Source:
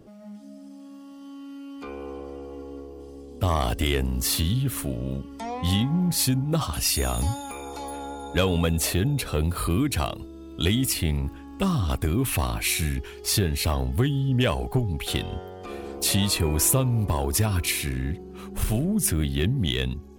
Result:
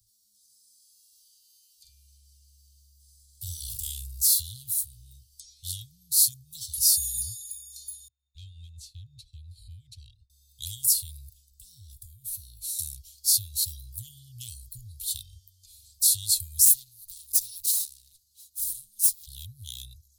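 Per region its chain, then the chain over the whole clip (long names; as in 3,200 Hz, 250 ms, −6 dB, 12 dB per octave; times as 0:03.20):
0:00.45–0:04.22: double-tracking delay 45 ms −3.5 dB + upward compression, threshold −43 dBFS
0:08.08–0:10.30: low-pass filter 2,200 Hz + noise gate with hold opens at −23 dBFS, closes at −28 dBFS + amplitude tremolo 5.5 Hz, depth 45%
0:11.50–0:12.79: low-shelf EQ 120 Hz +11.5 dB + downward compressor 2 to 1, threshold −29 dBFS + tuned comb filter 140 Hz, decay 0.41 s
0:16.65–0:19.27: lower of the sound and its delayed copy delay 5.1 ms + low-shelf EQ 480 Hz −12 dB
whole clip: Chebyshev band-stop filter 110–4,000 Hz, order 4; first-order pre-emphasis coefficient 0.9; level +4.5 dB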